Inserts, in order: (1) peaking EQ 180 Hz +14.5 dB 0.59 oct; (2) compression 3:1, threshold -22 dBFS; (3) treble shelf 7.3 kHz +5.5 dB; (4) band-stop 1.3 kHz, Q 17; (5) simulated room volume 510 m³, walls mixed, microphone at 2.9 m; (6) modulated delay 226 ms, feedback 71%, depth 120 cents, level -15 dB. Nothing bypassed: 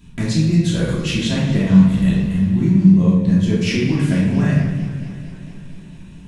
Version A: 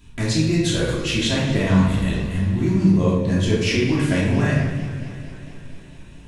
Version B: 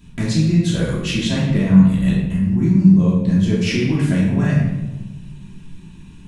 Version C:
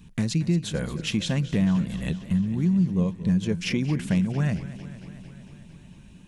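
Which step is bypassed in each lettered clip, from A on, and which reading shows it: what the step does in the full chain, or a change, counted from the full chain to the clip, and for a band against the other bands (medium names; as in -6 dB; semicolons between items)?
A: 1, 250 Hz band -7.5 dB; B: 6, momentary loudness spread change -6 LU; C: 5, momentary loudness spread change +1 LU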